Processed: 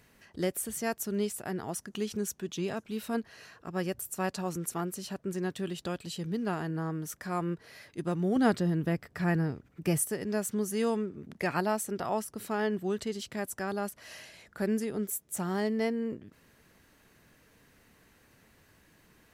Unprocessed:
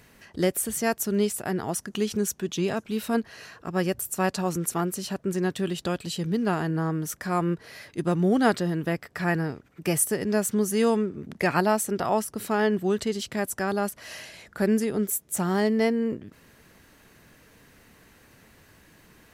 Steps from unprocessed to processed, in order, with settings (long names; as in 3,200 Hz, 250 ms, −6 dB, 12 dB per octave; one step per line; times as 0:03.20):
0:08.36–0:10.01: low-shelf EQ 280 Hz +9 dB
level −7 dB